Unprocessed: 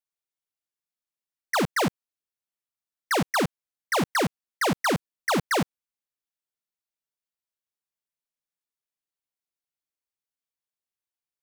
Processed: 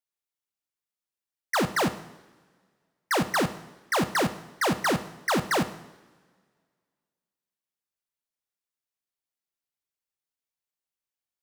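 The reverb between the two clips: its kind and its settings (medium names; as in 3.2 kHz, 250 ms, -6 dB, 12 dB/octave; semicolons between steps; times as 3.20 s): two-slope reverb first 0.8 s, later 2 s, from -16 dB, DRR 10 dB; trim -1 dB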